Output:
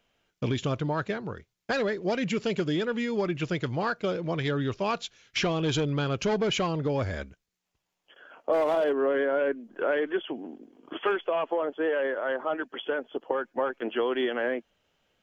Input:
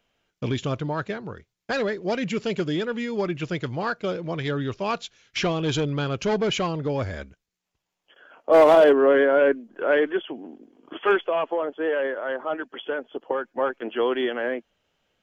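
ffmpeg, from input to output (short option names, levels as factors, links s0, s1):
-af "acompressor=threshold=0.0708:ratio=6"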